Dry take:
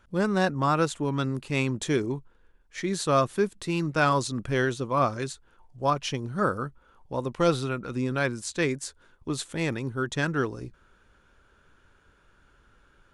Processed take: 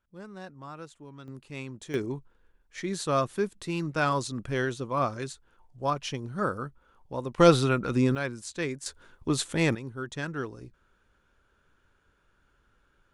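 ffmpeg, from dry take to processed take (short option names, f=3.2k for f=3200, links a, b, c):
-af "asetnsamples=n=441:p=0,asendcmd='1.28 volume volume -12.5dB;1.94 volume volume -3.5dB;7.38 volume volume 5dB;8.15 volume volume -5.5dB;8.86 volume volume 3.5dB;9.75 volume volume -7dB',volume=-19dB"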